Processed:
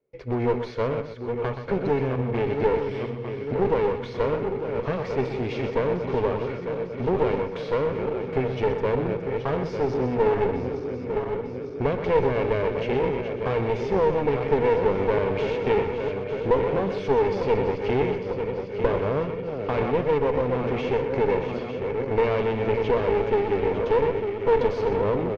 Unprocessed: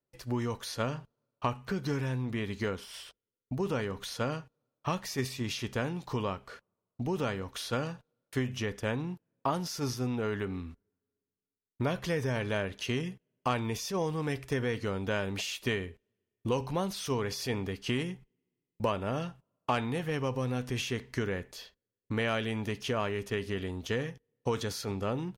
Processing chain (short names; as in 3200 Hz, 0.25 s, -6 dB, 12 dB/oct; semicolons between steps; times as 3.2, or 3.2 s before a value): regenerating reverse delay 0.45 s, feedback 76%, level -9 dB; in parallel at -1.5 dB: limiter -25 dBFS, peak gain reduction 9 dB; on the sum: high shelf 3400 Hz -10 dB; small resonant body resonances 450/2200 Hz, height 16 dB, ringing for 30 ms; one-sided clip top -28 dBFS; air absorption 200 m; on a send: echo 0.125 s -9.5 dB